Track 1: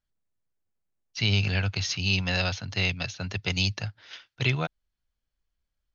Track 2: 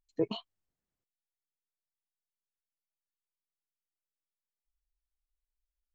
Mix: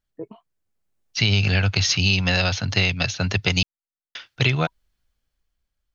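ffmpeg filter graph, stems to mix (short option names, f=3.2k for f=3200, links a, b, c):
-filter_complex "[0:a]bandreject=f=970:w=26,dynaudnorm=f=230:g=9:m=11.5dB,volume=2.5dB,asplit=3[a][b][c];[a]atrim=end=3.63,asetpts=PTS-STARTPTS,afade=t=out:st=3.626:d=0.004:c=hsin[d];[b]atrim=start=3.63:end=4.15,asetpts=PTS-STARTPTS,volume=0[e];[c]atrim=start=4.15,asetpts=PTS-STARTPTS,afade=t=in:d=0.004:c=hsin[f];[d][e][f]concat=n=3:v=0:a=1[g];[1:a]lowpass=f=1.9k:w=0.5412,lowpass=f=1.9k:w=1.3066,volume=-5dB[h];[g][h]amix=inputs=2:normalize=0,acompressor=threshold=-16dB:ratio=6"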